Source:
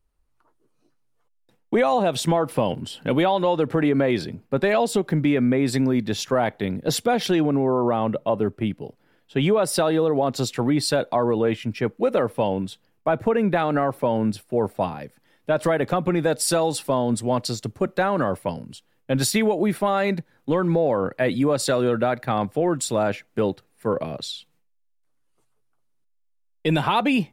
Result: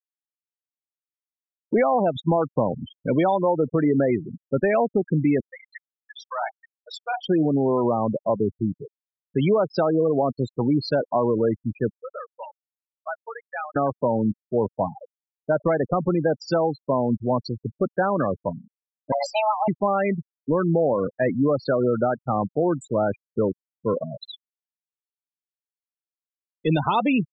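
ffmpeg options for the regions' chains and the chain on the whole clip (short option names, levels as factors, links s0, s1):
-filter_complex "[0:a]asettb=1/sr,asplit=3[s0][s1][s2];[s0]atrim=end=5.404[s3];[s1]atrim=start=5.4:end=7.23,asetpts=PTS-STARTPTS,afade=t=in:d=0.004:c=qsin,afade=t=out:st=1.826:d=0.004:c=qsin,highpass=f=800:w=0.5412,highpass=f=800:w=1.3066,asplit=2[s4][s5];[s5]adelay=42,volume=0.447[s6];[s4][s6]amix=inputs=2:normalize=0,atrim=end_sample=80703[s7];[s2]atrim=start=7.226[s8];[s3][s7]acrossfade=d=0.004:c1=hsin:c2=qsin[s9];[s9][s8]acrossfade=d=0.004:c1=qsin:c2=hsin,asettb=1/sr,asplit=3[s10][s11][s12];[s10]atrim=end=11.924[s13];[s11]atrim=start=11.92:end=13.76,asetpts=PTS-STARTPTS,afade=t=in:d=0.004:c=qsin,afade=t=out:st=1.836:d=0.004:c=qsin,highpass=1200,equalizer=f=5500:w=1.6:g=7[s14];[s12]atrim=start=13.756[s15];[s13][s14]acrossfade=d=0.004:c1=hsin:c2=qsin[s16];[s16][s15]acrossfade=d=0.004:c1=qsin:c2=hsin,asettb=1/sr,asplit=3[s17][s18][s19];[s17]atrim=end=19.124[s20];[s18]atrim=start=19.12:end=19.68,asetpts=PTS-STARTPTS,afade=t=in:d=0.004:c=qsin,afade=t=out:st=0.556:d=0.004:c=qsin,lowshelf=f=400:g=-2.5,bandreject=f=50:t=h:w=6,bandreject=f=100:t=h:w=6,bandreject=f=150:t=h:w=6,bandreject=f=200:t=h:w=6,bandreject=f=250:t=h:w=6,afreqshift=430[s21];[s19]atrim=start=19.676[s22];[s20][s21]acrossfade=d=0.004:c1=hsin:c2=qsin[s23];[s23][s22]acrossfade=d=0.004:c1=qsin:c2=hsin,lowpass=f=7400:w=0.5412,lowpass=f=7400:w=1.3066,afftfilt=real='re*gte(hypot(re,im),0.126)':imag='im*gte(hypot(re,im),0.126)':win_size=1024:overlap=0.75,highshelf=f=5000:g=-9.5"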